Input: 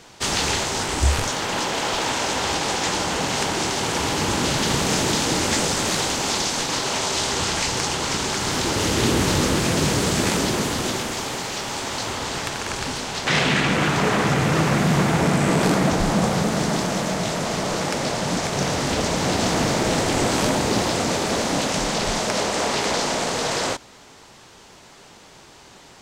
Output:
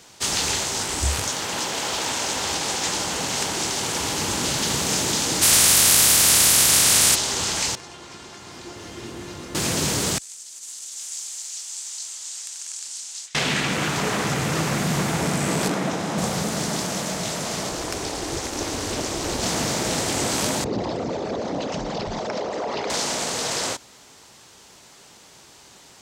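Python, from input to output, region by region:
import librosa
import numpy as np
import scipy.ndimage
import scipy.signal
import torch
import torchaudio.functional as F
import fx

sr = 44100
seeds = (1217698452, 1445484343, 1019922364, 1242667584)

y = fx.spec_clip(x, sr, under_db=26, at=(5.41, 7.14), fade=0.02)
y = fx.peak_eq(y, sr, hz=100.0, db=6.5, octaves=2.5, at=(5.41, 7.14), fade=0.02)
y = fx.env_flatten(y, sr, amount_pct=70, at=(5.41, 7.14), fade=0.02)
y = fx.chain(y, sr, fx.lowpass(hz=2300.0, slope=6),
    fx.comb_fb(f0_hz=350.0, decay_s=0.27, harmonics='all', damping=0.0, mix_pct=80), at=(7.75, 9.55))
y = fx.chain(y, sr, fx.over_compress(threshold_db=-27.0, ratio=-1.0),
    fx.bandpass_q(hz=7500.0, q=2.1), at=(10.18, 13.35))
y = fx.chain(y, sr, fx.highpass(hz=150.0, slope=12),
    fx.high_shelf(hz=6100.0, db=-11.5),
    fx.notch(hz=4500.0, q=15.0), at=(15.68, 16.18))
y = fx.chain(y, sr, fx.low_shelf(hz=360.0, db=5.5),
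    fx.ring_mod(carrier_hz=160.0), at=(17.69, 19.43))
y = fx.chain(y, sr, fx.envelope_sharpen(power=2.0),
    fx.lowpass(hz=4400.0, slope=12), at=(20.64, 22.9))
y = scipy.signal.sosfilt(scipy.signal.butter(2, 42.0, 'highpass', fs=sr, output='sos'), y)
y = fx.high_shelf(y, sr, hz=4700.0, db=10.5)
y = F.gain(torch.from_numpy(y), -5.0).numpy()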